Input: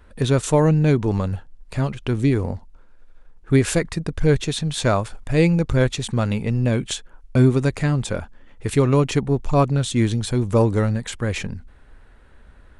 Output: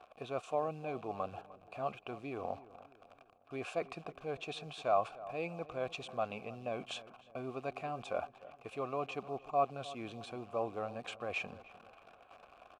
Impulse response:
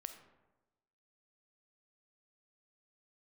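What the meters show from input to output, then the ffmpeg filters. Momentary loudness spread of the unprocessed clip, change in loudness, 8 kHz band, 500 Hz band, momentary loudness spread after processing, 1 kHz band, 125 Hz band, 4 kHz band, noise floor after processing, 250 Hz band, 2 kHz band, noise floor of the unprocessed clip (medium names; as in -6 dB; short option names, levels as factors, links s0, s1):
11 LU, -19.0 dB, -27.5 dB, -15.5 dB, 18 LU, -8.5 dB, -31.5 dB, -17.5 dB, -63 dBFS, -26.0 dB, -15.5 dB, -48 dBFS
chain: -filter_complex "[0:a]areverse,acompressor=threshold=0.0398:ratio=4,areverse,acrusher=bits=9:dc=4:mix=0:aa=0.000001,asplit=3[s0][s1][s2];[s0]bandpass=f=730:t=q:w=8,volume=1[s3];[s1]bandpass=f=1090:t=q:w=8,volume=0.501[s4];[s2]bandpass=f=2440:t=q:w=8,volume=0.355[s5];[s3][s4][s5]amix=inputs=3:normalize=0,asplit=2[s6][s7];[s7]adelay=303,lowpass=f=1600:p=1,volume=0.15,asplit=2[s8][s9];[s9]adelay=303,lowpass=f=1600:p=1,volume=0.45,asplit=2[s10][s11];[s11]adelay=303,lowpass=f=1600:p=1,volume=0.45,asplit=2[s12][s13];[s13]adelay=303,lowpass=f=1600:p=1,volume=0.45[s14];[s6][s8][s10][s12][s14]amix=inputs=5:normalize=0,volume=2.51"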